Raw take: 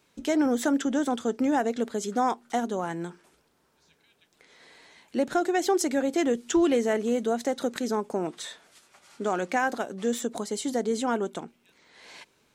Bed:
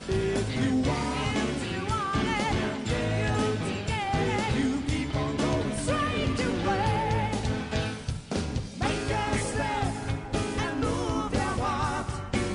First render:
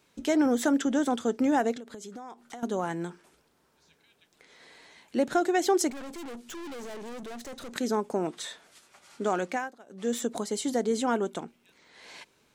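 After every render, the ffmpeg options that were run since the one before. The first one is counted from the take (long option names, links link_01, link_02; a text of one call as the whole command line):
ffmpeg -i in.wav -filter_complex "[0:a]asettb=1/sr,asplit=3[link_01][link_02][link_03];[link_01]atrim=end=1.774[link_04];[link_02]atrim=start=1.77:end=2.63,asetpts=PTS-STARTPTS,afade=type=in:duration=0.004:curve=qsin,afade=type=out:start_time=0.856:duration=0.004:curve=qsin,acompressor=threshold=-38dB:ratio=16:attack=3.2:release=140:knee=1:detection=peak[link_05];[link_03]atrim=start=2.626[link_06];[link_04][link_05]acrossfade=duration=0.004:curve1=hsin:curve2=qsin[link_07];[link_07][link_06]acrossfade=duration=0.004:curve1=qsin:curve2=hsin,asettb=1/sr,asplit=3[link_08][link_09][link_10];[link_08]atrim=end=5.904[link_11];[link_09]atrim=start=5.9:end=7.73,asetpts=PTS-STARTPTS,afade=type=in:duration=0.004:curve=qsin,afade=type=out:start_time=1.826:duration=0.004:curve=qsin,aeval=exprs='(tanh(89.1*val(0)+0.35)-tanh(0.35))/89.1':channel_layout=same[link_12];[link_10]atrim=start=7.726[link_13];[link_11][link_12]acrossfade=duration=0.004:curve1=hsin:curve2=qsin[link_14];[link_14][link_13]acrossfade=duration=0.004:curve1=qsin:curve2=hsin,asplit=3[link_15][link_16][link_17];[link_15]atrim=end=9.72,asetpts=PTS-STARTPTS,afade=type=out:start_time=9.28:duration=0.44:curve=qsin:silence=0.0841395[link_18];[link_16]atrim=start=9.72:end=9.85,asetpts=PTS-STARTPTS,volume=-21.5dB[link_19];[link_17]atrim=start=9.85,asetpts=PTS-STARTPTS,afade=type=in:duration=0.44:curve=qsin:silence=0.0841395[link_20];[link_18][link_19][link_20]concat=n=3:v=0:a=1" out.wav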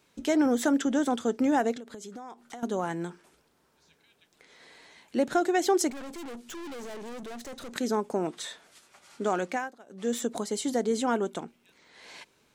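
ffmpeg -i in.wav -af anull out.wav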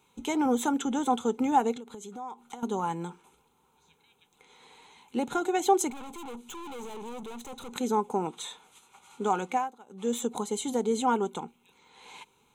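ffmpeg -i in.wav -af "superequalizer=6b=0.631:8b=0.355:9b=2:11b=0.316:14b=0.251" out.wav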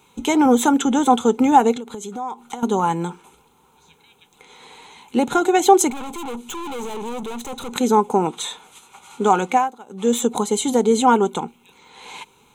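ffmpeg -i in.wav -af "volume=11dB,alimiter=limit=-2dB:level=0:latency=1" out.wav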